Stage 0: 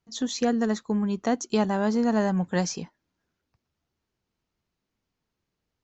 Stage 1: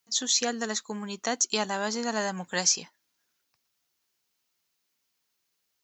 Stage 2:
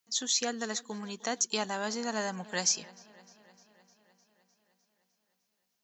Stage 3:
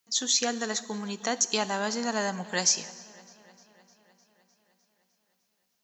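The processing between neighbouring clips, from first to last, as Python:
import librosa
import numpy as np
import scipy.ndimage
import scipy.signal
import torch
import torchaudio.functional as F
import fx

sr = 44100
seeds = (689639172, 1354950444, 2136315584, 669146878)

y1 = fx.tilt_eq(x, sr, slope=4.5)
y1 = y1 * 10.0 ** (-1.0 / 20.0)
y2 = fx.echo_wet_lowpass(y1, sr, ms=304, feedback_pct=66, hz=3900.0, wet_db=-21)
y2 = y2 * 10.0 ** (-4.0 / 20.0)
y3 = fx.rev_plate(y2, sr, seeds[0], rt60_s=1.4, hf_ratio=0.95, predelay_ms=0, drr_db=14.5)
y3 = y3 * 10.0 ** (4.0 / 20.0)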